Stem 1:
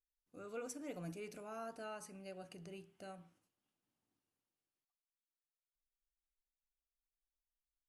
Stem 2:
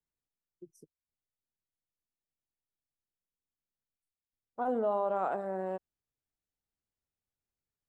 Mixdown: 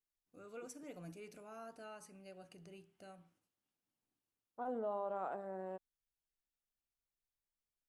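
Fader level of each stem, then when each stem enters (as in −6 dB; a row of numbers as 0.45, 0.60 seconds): −4.5, −9.5 decibels; 0.00, 0.00 seconds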